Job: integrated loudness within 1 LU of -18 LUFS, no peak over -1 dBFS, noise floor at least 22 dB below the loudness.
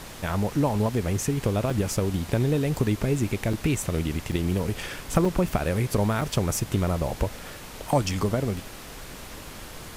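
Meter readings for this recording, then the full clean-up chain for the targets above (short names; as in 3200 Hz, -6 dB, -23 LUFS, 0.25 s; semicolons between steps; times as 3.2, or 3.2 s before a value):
dropouts 5; longest dropout 4.4 ms; noise floor -41 dBFS; noise floor target -49 dBFS; loudness -26.5 LUFS; peak -8.0 dBFS; loudness target -18.0 LUFS
-> interpolate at 1.7/3.53/4.32/5.25/6.21, 4.4 ms; noise print and reduce 8 dB; gain +8.5 dB; limiter -1 dBFS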